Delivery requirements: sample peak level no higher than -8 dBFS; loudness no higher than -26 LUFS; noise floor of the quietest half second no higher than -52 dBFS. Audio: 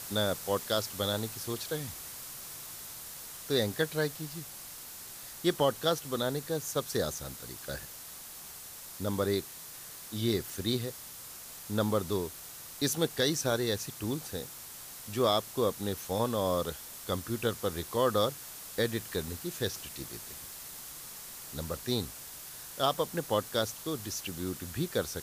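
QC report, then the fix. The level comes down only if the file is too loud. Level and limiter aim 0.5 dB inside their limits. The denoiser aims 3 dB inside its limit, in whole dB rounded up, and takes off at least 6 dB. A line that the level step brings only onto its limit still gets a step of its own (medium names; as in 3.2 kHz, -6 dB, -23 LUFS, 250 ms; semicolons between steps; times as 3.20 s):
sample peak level -14.5 dBFS: pass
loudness -33.5 LUFS: pass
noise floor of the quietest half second -46 dBFS: fail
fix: noise reduction 9 dB, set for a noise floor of -46 dBFS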